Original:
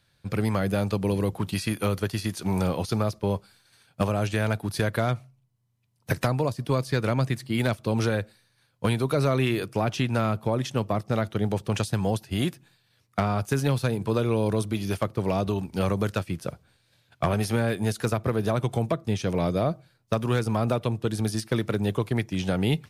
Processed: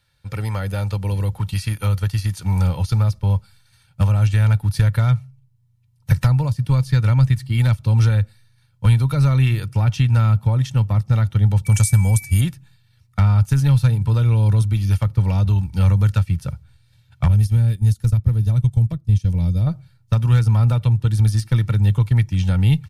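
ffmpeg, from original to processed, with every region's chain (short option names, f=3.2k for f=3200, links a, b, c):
-filter_complex "[0:a]asettb=1/sr,asplit=3[a][b][c];[a]atrim=end=11.654[d];[b]atrim=start=11.65:end=12.41,asetpts=PTS-STARTPTS,afade=t=in:d=0.004:c=qsin,afade=t=out:st=0.756:d=0.004:c=qsin,highshelf=f=5.5k:t=q:w=1.5:g=13.5,aeval=exprs='val(0)+0.0112*sin(2*PI*2300*n/s)':c=same[e];[c]atrim=start=12.406[f];[d][e]acrossfade=d=0.004:c1=hsin:c2=qsin[g];[g][f]acrossfade=d=0.004:c1=qsin:c2=hsin,asettb=1/sr,asplit=3[h][i][j];[h]atrim=end=17.284[k];[i]atrim=start=17.28:end=19.67,asetpts=PTS-STARTPTS,afade=t=in:d=0.004:c=qsin,afade=t=out:st=2.386:d=0.004:c=qsin,agate=range=-9dB:threshold=-30dB:ratio=16:release=100:detection=peak,equalizer=f=1.3k:w=0.43:g=-12.5[l];[j]atrim=start=19.666[m];[k][l]acrossfade=d=0.004:c1=hsin:c2=qsin[n];[n][m]acrossfade=d=0.004:c1=qsin:c2=hsin,equalizer=f=390:t=o:w=0.6:g=-11.5,aecho=1:1:2.2:0.52,asubboost=boost=7:cutoff=160"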